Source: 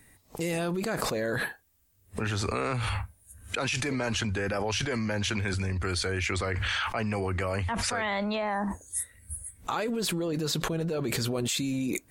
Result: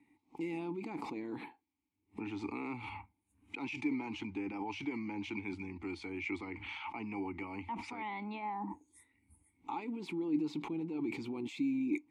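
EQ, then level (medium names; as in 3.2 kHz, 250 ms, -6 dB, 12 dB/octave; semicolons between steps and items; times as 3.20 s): vowel filter u; +3.5 dB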